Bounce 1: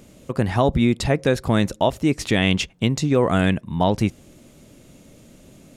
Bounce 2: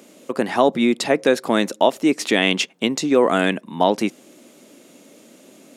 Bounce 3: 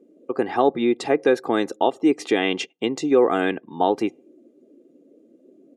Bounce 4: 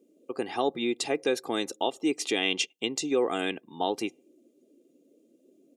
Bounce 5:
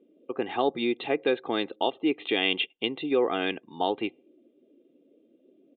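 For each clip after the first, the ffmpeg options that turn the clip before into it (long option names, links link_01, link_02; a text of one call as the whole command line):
ffmpeg -i in.wav -af "highpass=frequency=240:width=0.5412,highpass=frequency=240:width=1.3066,volume=3.5dB" out.wav
ffmpeg -i in.wav -af "afftdn=noise_reduction=24:noise_floor=-42,highshelf=frequency=2100:gain=-9.5,aecho=1:1:2.5:0.57,volume=-2dB" out.wav
ffmpeg -i in.wav -af "aexciter=amount=4.4:drive=2.6:freq=2400,volume=-9dB" out.wav
ffmpeg -i in.wav -af "asubboost=boost=2.5:cutoff=82,aresample=8000,aresample=44100,volume=2dB" out.wav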